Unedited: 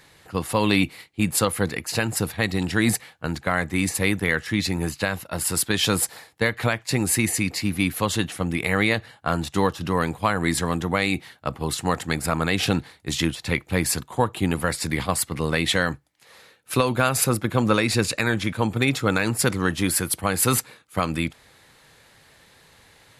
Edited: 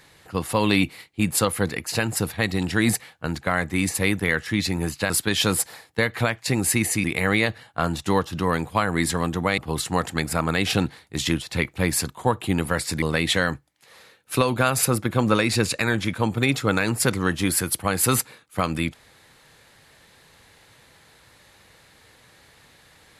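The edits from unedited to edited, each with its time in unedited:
5.1–5.53 cut
7.47–8.52 cut
11.06–11.51 cut
14.95–15.41 cut

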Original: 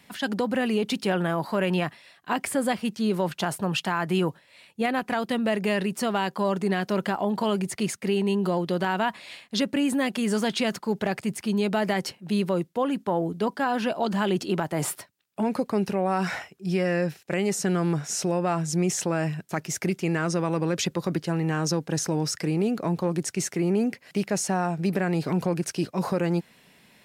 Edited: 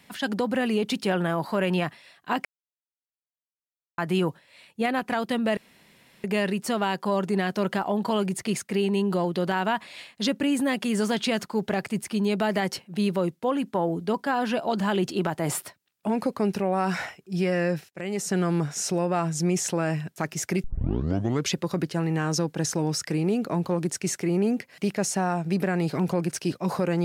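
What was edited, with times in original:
2.45–3.98 mute
5.57 insert room tone 0.67 s
17.22–17.69 fade in, from -14 dB
19.97 tape start 0.88 s

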